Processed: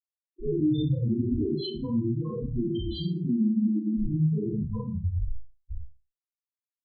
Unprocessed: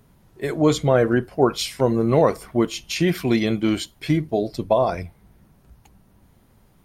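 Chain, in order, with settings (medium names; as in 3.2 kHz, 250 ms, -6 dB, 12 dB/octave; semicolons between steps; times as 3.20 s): 3.94–5.04 s: sorted samples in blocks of 16 samples; in parallel at -1 dB: compressor with a negative ratio -24 dBFS, ratio -0.5; on the sum: static phaser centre 2.4 kHz, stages 6; on a send: feedback delay 120 ms, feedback 47%, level -10 dB; on the sum: level-controlled noise filter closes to 1.2 kHz, open at -15 dBFS; treble shelf 9.4 kHz -3 dB; Schmitt trigger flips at -32.5 dBFS; loudest bins only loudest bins 2; 0.59–1.53 s: peaking EQ 88 Hz +11.5 dB 0.75 oct; Schroeder reverb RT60 0.31 s, combs from 26 ms, DRR -5.5 dB; trim -4.5 dB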